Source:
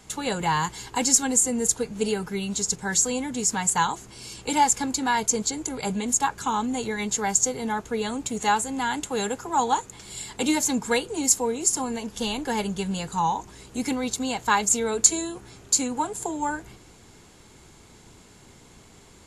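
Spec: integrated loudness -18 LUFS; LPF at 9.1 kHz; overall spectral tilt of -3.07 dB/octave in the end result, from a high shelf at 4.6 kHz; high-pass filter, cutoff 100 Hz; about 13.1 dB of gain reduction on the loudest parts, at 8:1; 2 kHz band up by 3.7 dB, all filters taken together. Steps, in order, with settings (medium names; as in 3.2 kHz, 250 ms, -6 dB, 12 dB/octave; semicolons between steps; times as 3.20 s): high-pass 100 Hz; low-pass 9.1 kHz; peaking EQ 2 kHz +6 dB; treble shelf 4.6 kHz -7.5 dB; compression 8:1, threshold -28 dBFS; trim +14.5 dB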